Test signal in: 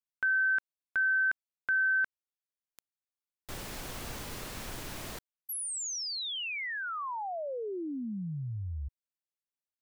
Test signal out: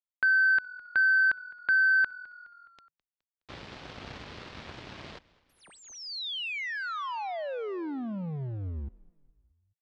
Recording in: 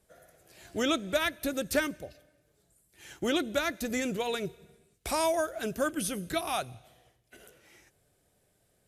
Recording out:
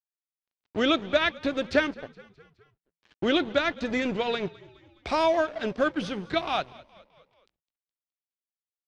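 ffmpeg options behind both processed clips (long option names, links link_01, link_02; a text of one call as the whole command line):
ffmpeg -i in.wav -filter_complex "[0:a]highpass=frequency=54:width=0.5412,highpass=frequency=54:width=1.3066,aeval=exprs='sgn(val(0))*max(abs(val(0))-0.00708,0)':channel_layout=same,lowpass=frequency=4400:width=0.5412,lowpass=frequency=4400:width=1.3066,asplit=2[link_01][link_02];[link_02]asplit=4[link_03][link_04][link_05][link_06];[link_03]adelay=209,afreqshift=-42,volume=-22dB[link_07];[link_04]adelay=418,afreqshift=-84,volume=-27.2dB[link_08];[link_05]adelay=627,afreqshift=-126,volume=-32.4dB[link_09];[link_06]adelay=836,afreqshift=-168,volume=-37.6dB[link_10];[link_07][link_08][link_09][link_10]amix=inputs=4:normalize=0[link_11];[link_01][link_11]amix=inputs=2:normalize=0,volume=6dB" out.wav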